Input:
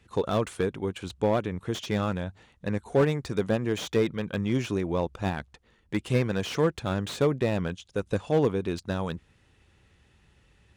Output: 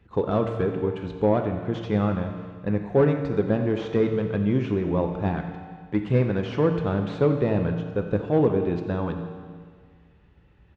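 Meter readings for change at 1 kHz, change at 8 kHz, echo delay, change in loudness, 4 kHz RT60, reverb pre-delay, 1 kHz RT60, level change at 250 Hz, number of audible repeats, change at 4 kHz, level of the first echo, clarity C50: +2.0 dB, under -15 dB, 89 ms, +3.5 dB, 1.7 s, 7 ms, 1.8 s, +4.5 dB, 1, -7.0 dB, -15.0 dB, 6.5 dB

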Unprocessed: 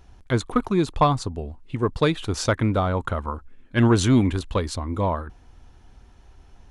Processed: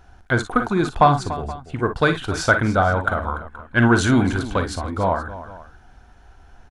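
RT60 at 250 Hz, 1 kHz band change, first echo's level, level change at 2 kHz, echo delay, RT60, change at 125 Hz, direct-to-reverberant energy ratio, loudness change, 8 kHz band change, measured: none, +6.0 dB, -11.0 dB, +11.5 dB, 42 ms, none, +0.5 dB, none, +3.0 dB, +1.0 dB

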